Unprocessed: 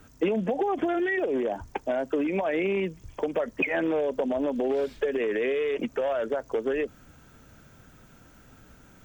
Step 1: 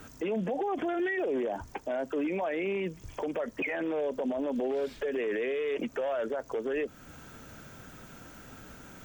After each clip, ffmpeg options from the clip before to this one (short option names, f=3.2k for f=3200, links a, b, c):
-af "lowshelf=f=130:g=-7,acompressor=threshold=-43dB:ratio=1.5,alimiter=level_in=7dB:limit=-24dB:level=0:latency=1:release=14,volume=-7dB,volume=6.5dB"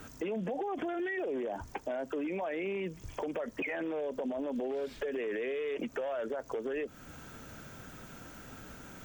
-af "acompressor=threshold=-32dB:ratio=6"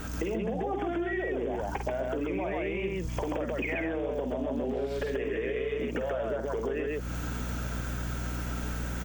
-af "aeval=exprs='val(0)+0.00398*(sin(2*PI*60*n/s)+sin(2*PI*2*60*n/s)/2+sin(2*PI*3*60*n/s)/3+sin(2*PI*4*60*n/s)/4+sin(2*PI*5*60*n/s)/5)':c=same,aecho=1:1:49.56|134.1:0.447|0.891,acompressor=threshold=-37dB:ratio=6,volume=8.5dB"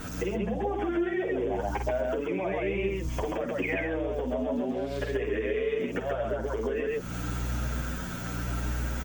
-filter_complex "[0:a]asplit=2[a][b];[b]adelay=8.7,afreqshift=0.86[c];[a][c]amix=inputs=2:normalize=1,volume=4.5dB"